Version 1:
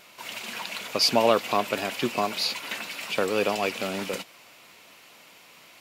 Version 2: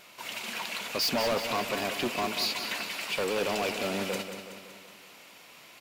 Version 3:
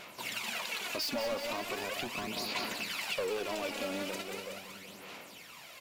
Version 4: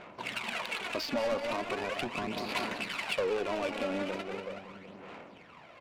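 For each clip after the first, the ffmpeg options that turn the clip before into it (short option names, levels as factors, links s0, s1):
-filter_complex "[0:a]volume=15.8,asoftclip=hard,volume=0.0631,asplit=2[s0][s1];[s1]aecho=0:1:187|374|561|748|935|1122|1309:0.355|0.199|0.111|0.0623|0.0349|0.0195|0.0109[s2];[s0][s2]amix=inputs=2:normalize=0,volume=0.891"
-af "acompressor=threshold=0.0178:ratio=6,aphaser=in_gain=1:out_gain=1:delay=3.6:decay=0.54:speed=0.39:type=sinusoidal,acrusher=bits=9:mode=log:mix=0:aa=0.000001"
-af "adynamicsmooth=sensitivity=6.5:basefreq=1300,volume=1.58"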